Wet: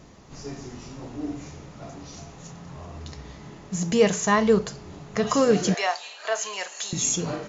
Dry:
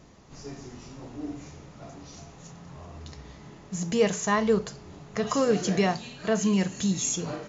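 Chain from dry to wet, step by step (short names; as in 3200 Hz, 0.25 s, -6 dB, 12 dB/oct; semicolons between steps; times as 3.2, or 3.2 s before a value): 5.74–6.93 HPF 610 Hz 24 dB/oct; gain +4 dB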